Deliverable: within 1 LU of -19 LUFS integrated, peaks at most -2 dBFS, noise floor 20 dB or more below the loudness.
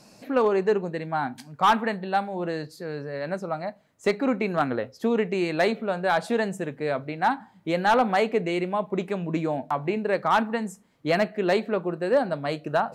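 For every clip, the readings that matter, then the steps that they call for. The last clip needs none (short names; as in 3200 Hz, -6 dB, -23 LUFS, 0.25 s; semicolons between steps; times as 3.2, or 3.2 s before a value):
clipped 0.3%; flat tops at -13.0 dBFS; loudness -26.0 LUFS; peak -13.0 dBFS; loudness target -19.0 LUFS
-> clip repair -13 dBFS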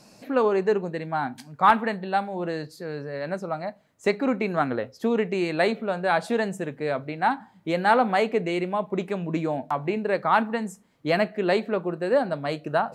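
clipped 0.0%; loudness -25.5 LUFS; peak -4.0 dBFS; loudness target -19.0 LUFS
-> gain +6.5 dB; limiter -2 dBFS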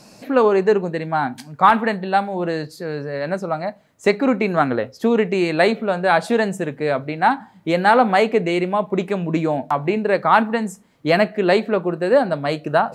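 loudness -19.5 LUFS; peak -2.0 dBFS; noise floor -50 dBFS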